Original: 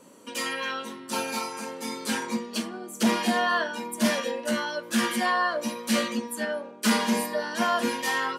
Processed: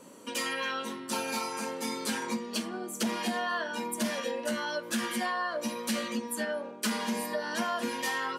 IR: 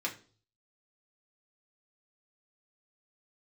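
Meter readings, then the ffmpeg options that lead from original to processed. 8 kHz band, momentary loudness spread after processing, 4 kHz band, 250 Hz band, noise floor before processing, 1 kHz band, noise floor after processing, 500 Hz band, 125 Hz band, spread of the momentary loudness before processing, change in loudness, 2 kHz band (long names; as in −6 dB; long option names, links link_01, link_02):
−3.0 dB, 4 LU, −4.5 dB, −6.0 dB, −44 dBFS, −5.5 dB, −43 dBFS, −4.5 dB, −6.0 dB, 8 LU, −5.0 dB, −5.0 dB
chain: -af "acompressor=threshold=-30dB:ratio=5,volume=1dB"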